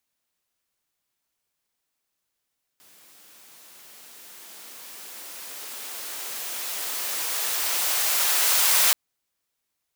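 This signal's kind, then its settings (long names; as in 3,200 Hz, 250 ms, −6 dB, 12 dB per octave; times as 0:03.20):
filter sweep on noise white, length 6.13 s highpass, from 150 Hz, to 740 Hz, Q 0.75, exponential, gain ramp +36 dB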